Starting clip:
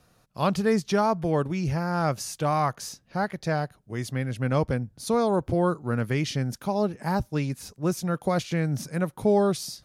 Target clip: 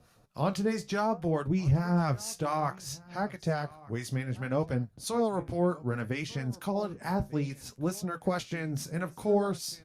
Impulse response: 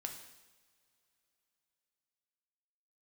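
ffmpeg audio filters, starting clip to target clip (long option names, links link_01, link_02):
-filter_complex "[0:a]asettb=1/sr,asplit=3[link_01][link_02][link_03];[link_01]atrim=end=1.474[link_04];[link_02]atrim=start=1.47:end=2.16,asetpts=PTS-STARTPTS,afade=type=in:duration=0.004:curve=qsin,afade=type=out:start_time=0.686:duration=0.004:curve=qsin,lowshelf=frequency=200:gain=11[link_05];[link_03]atrim=start=2.156[link_06];[link_04][link_05]acrossfade=duration=0.004:curve1=hsin:curve2=qsin[link_07];[link_07][link_06]acrossfade=duration=0.004:curve1=qsin:curve2=hsin,asplit=2[link_08][link_09];[link_09]acompressor=threshold=-34dB:ratio=6,volume=1.5dB[link_10];[link_08][link_10]amix=inputs=2:normalize=0,acrossover=split=820[link_11][link_12];[link_11]aeval=exprs='val(0)*(1-0.7/2+0.7/2*cos(2*PI*4.6*n/s))':channel_layout=same[link_13];[link_12]aeval=exprs='val(0)*(1-0.7/2-0.7/2*cos(2*PI*4.6*n/s))':channel_layout=same[link_14];[link_13][link_14]amix=inputs=2:normalize=0,flanger=delay=8.6:depth=8.6:regen=-59:speed=0.62:shape=sinusoidal,asplit=2[link_15][link_16];[link_16]aecho=0:1:1194:0.0794[link_17];[link_15][link_17]amix=inputs=2:normalize=0,aresample=32000,aresample=44100" -ar 48000 -c:a libopus -b:a 64k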